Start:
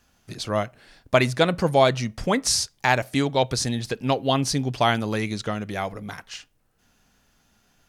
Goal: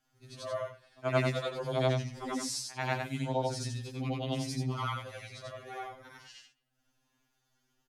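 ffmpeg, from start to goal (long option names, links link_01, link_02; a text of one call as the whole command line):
ffmpeg -i in.wav -filter_complex "[0:a]afftfilt=real='re':imag='-im':win_size=8192:overlap=0.75,asplit=2[link_01][link_02];[link_02]adelay=220,highpass=300,lowpass=3400,asoftclip=type=hard:threshold=-18dB,volume=-29dB[link_03];[link_01][link_03]amix=inputs=2:normalize=0,afftfilt=real='re*2.45*eq(mod(b,6),0)':imag='im*2.45*eq(mod(b,6),0)':win_size=2048:overlap=0.75,volume=-6.5dB" out.wav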